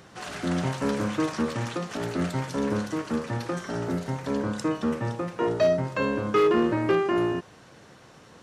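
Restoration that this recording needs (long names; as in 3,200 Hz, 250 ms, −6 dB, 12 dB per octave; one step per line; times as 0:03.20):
clipped peaks rebuilt −15 dBFS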